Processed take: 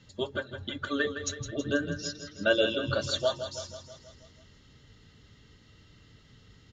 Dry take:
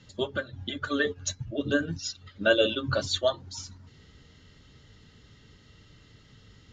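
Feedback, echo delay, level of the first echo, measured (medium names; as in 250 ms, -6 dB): 59%, 162 ms, -10.0 dB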